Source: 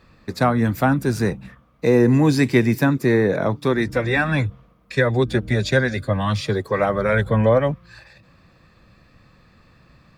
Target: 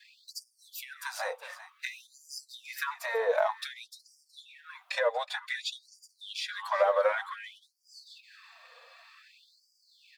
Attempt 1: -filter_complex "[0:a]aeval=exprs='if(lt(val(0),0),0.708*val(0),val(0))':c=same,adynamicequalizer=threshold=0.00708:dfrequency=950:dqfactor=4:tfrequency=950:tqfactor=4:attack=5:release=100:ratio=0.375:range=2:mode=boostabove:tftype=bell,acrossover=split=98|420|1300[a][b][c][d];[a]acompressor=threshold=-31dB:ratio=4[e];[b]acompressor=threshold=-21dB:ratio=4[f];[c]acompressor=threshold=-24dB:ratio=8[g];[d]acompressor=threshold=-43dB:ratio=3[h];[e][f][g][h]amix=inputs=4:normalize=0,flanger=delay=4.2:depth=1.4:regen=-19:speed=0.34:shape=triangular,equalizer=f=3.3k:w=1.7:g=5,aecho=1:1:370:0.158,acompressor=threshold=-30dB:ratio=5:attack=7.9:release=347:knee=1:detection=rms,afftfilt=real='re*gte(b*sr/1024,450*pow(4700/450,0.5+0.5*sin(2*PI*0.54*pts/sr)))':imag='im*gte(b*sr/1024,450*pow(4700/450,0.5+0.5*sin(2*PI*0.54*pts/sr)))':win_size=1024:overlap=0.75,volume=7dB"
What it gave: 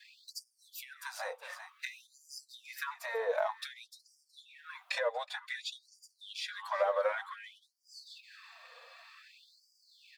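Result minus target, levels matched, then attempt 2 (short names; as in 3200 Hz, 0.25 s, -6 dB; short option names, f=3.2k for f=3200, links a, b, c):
compressor: peak gain reduction +5 dB
-filter_complex "[0:a]aeval=exprs='if(lt(val(0),0),0.708*val(0),val(0))':c=same,adynamicequalizer=threshold=0.00708:dfrequency=950:dqfactor=4:tfrequency=950:tqfactor=4:attack=5:release=100:ratio=0.375:range=2:mode=boostabove:tftype=bell,acrossover=split=98|420|1300[a][b][c][d];[a]acompressor=threshold=-31dB:ratio=4[e];[b]acompressor=threshold=-21dB:ratio=4[f];[c]acompressor=threshold=-24dB:ratio=8[g];[d]acompressor=threshold=-43dB:ratio=3[h];[e][f][g][h]amix=inputs=4:normalize=0,flanger=delay=4.2:depth=1.4:regen=-19:speed=0.34:shape=triangular,equalizer=f=3.3k:w=1.7:g=5,aecho=1:1:370:0.158,acompressor=threshold=-23.5dB:ratio=5:attack=7.9:release=347:knee=1:detection=rms,afftfilt=real='re*gte(b*sr/1024,450*pow(4700/450,0.5+0.5*sin(2*PI*0.54*pts/sr)))':imag='im*gte(b*sr/1024,450*pow(4700/450,0.5+0.5*sin(2*PI*0.54*pts/sr)))':win_size=1024:overlap=0.75,volume=7dB"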